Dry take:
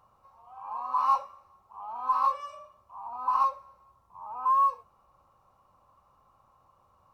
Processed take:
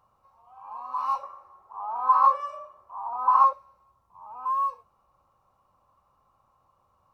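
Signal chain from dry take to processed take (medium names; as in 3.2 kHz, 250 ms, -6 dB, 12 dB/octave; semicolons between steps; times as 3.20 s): 1.23–3.53 s: high-order bell 780 Hz +9.5 dB 2.9 oct; trim -3 dB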